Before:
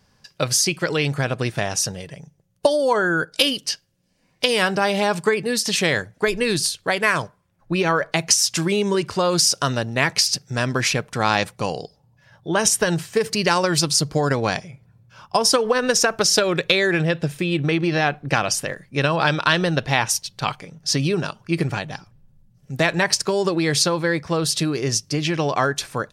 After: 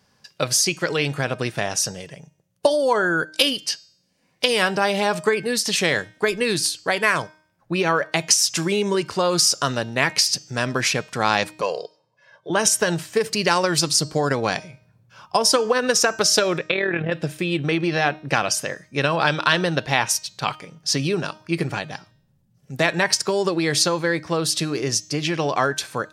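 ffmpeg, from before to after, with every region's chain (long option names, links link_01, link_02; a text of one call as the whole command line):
ffmpeg -i in.wav -filter_complex "[0:a]asettb=1/sr,asplit=3[link_01][link_02][link_03];[link_01]atrim=end=11.614[link_04];[link_02]atrim=start=11.61:end=12.5,asetpts=PTS-STARTPTS,afade=type=in:duration=0.004:curve=qsin,afade=type=out:start_time=0.886:duration=0.004:curve=qsin,highpass=310,lowpass=7800,highshelf=frequency=4300:gain=-5.5,aecho=1:1:1.9:0.7,atrim=end_sample=39249[link_05];[link_03]atrim=start=12.496[link_06];[link_04][link_05]acrossfade=duration=0.004:curve1=hsin:curve2=qsin[link_07];[link_07][link_06]acrossfade=duration=0.004:curve1=qsin:curve2=hsin,asettb=1/sr,asplit=3[link_08][link_09][link_10];[link_08]atrim=end=16.584[link_11];[link_09]atrim=start=16.58:end=17.12,asetpts=PTS-STARTPTS,afade=type=in:duration=0.004:curve=qsin,afade=type=out:start_time=0.536:duration=0.004:curve=qsin,lowpass=frequency=3000:width=0.5412,lowpass=frequency=3000:width=1.3066,tremolo=f=39:d=0.621[link_12];[link_10]atrim=start=17.116[link_13];[link_11][link_12]acrossfade=duration=0.004:curve1=hsin:curve2=qsin[link_14];[link_14][link_13]acrossfade=duration=0.004:curve1=qsin:curve2=hsin,highpass=frequency=160:poles=1,bandreject=frequency=310.7:width_type=h:width=4,bandreject=frequency=621.4:width_type=h:width=4,bandreject=frequency=932.1:width_type=h:width=4,bandreject=frequency=1242.8:width_type=h:width=4,bandreject=frequency=1553.5:width_type=h:width=4,bandreject=frequency=1864.2:width_type=h:width=4,bandreject=frequency=2174.9:width_type=h:width=4,bandreject=frequency=2485.6:width_type=h:width=4,bandreject=frequency=2796.3:width_type=h:width=4,bandreject=frequency=3107:width_type=h:width=4,bandreject=frequency=3417.7:width_type=h:width=4,bandreject=frequency=3728.4:width_type=h:width=4,bandreject=frequency=4039.1:width_type=h:width=4,bandreject=frequency=4349.8:width_type=h:width=4,bandreject=frequency=4660.5:width_type=h:width=4,bandreject=frequency=4971.2:width_type=h:width=4,bandreject=frequency=5281.9:width_type=h:width=4,bandreject=frequency=5592.6:width_type=h:width=4,bandreject=frequency=5903.3:width_type=h:width=4,bandreject=frequency=6214:width_type=h:width=4,bandreject=frequency=6524.7:width_type=h:width=4,bandreject=frequency=6835.4:width_type=h:width=4,bandreject=frequency=7146.1:width_type=h:width=4,bandreject=frequency=7456.8:width_type=h:width=4,bandreject=frequency=7767.5:width_type=h:width=4,bandreject=frequency=8078.2:width_type=h:width=4" out.wav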